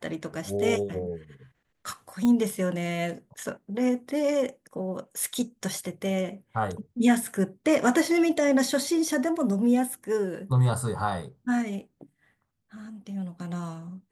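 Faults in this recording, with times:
2.25 s: pop -15 dBFS

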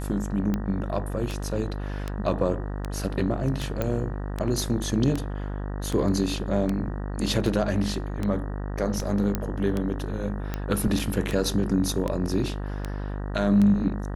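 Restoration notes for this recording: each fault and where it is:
buzz 50 Hz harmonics 38 -31 dBFS
tick 78 rpm -15 dBFS
3.82 s: pop -14 dBFS
9.35 s: pop -11 dBFS
10.99 s: dropout 4.7 ms

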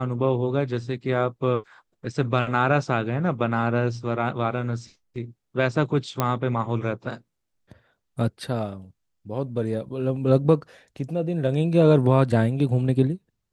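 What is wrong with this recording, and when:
6.20 s: pop -8 dBFS

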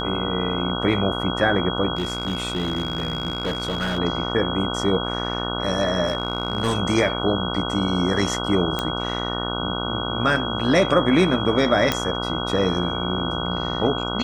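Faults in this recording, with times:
buzz 60 Hz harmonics 25 -28 dBFS
whine 3.3 kHz -29 dBFS
1.95–3.99 s: clipped -20 dBFS
6.07–6.77 s: clipped -16 dBFS
8.79 s: pop -9 dBFS
11.92 s: pop -4 dBFS

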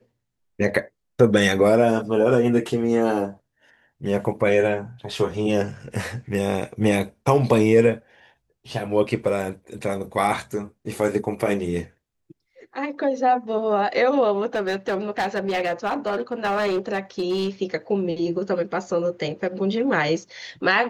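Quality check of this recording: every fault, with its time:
14.55–17.49 s: clipped -19 dBFS

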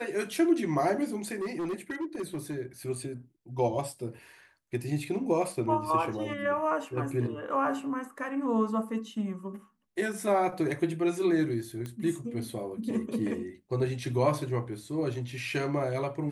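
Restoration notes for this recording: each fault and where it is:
1.39–2.56 s: clipped -29.5 dBFS
11.86 s: pop -25 dBFS

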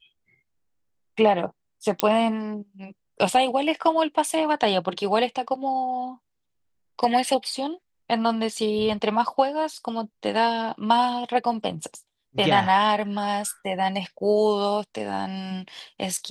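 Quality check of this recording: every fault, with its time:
2.00 s: pop -3 dBFS

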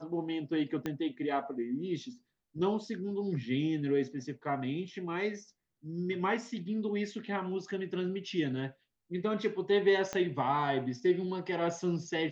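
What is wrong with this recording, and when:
0.86 s: pop -21 dBFS
10.13 s: pop -20 dBFS

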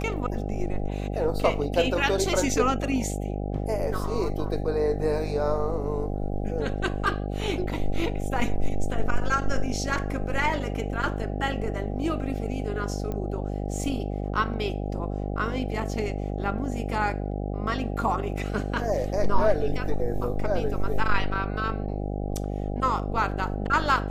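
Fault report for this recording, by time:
buzz 50 Hz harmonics 16 -30 dBFS
13.12 s: pop -20 dBFS

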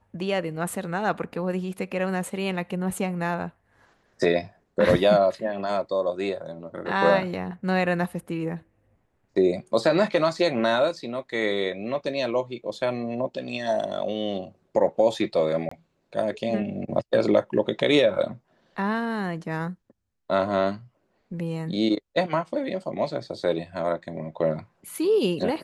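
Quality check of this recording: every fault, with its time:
15.69–15.71 s: dropout 24 ms

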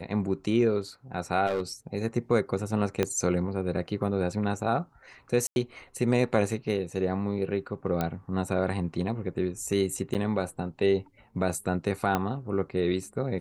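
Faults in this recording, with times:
1.47–1.62 s: clipped -23.5 dBFS
3.03 s: pop -11 dBFS
5.47–5.56 s: dropout 91 ms
8.01 s: pop -14 dBFS
10.14–10.15 s: dropout 8.3 ms
12.15 s: pop -12 dBFS

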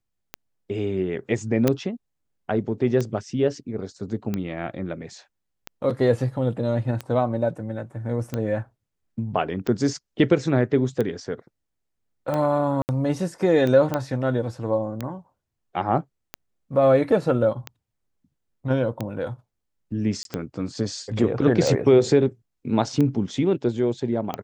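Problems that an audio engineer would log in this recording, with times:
tick 45 rpm -14 dBFS
1.68 s: pop -6 dBFS
12.82–12.89 s: dropout 69 ms
13.94 s: pop -11 dBFS
20.23–20.25 s: dropout 22 ms

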